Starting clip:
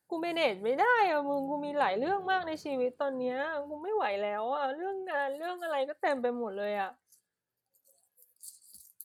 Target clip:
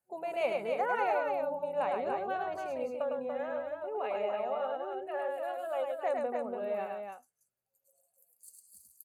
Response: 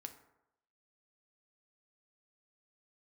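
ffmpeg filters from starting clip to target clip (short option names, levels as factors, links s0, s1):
-af "superequalizer=6b=0.398:8b=1.78:11b=0.562:13b=0.282:14b=0.447,aecho=1:1:105|287:0.668|0.562,volume=0.473"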